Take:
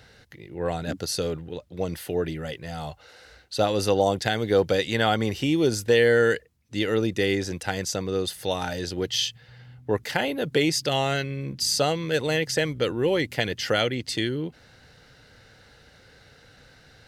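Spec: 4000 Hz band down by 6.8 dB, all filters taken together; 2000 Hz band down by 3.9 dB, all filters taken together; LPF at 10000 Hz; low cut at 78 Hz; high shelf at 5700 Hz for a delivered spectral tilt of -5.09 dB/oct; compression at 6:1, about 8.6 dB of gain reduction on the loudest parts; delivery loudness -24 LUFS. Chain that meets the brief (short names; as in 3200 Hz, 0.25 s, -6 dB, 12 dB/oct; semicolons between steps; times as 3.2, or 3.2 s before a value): HPF 78 Hz; LPF 10000 Hz; bell 2000 Hz -3 dB; bell 4000 Hz -5 dB; high shelf 5700 Hz -7.5 dB; compressor 6:1, threshold -25 dBFS; gain +7.5 dB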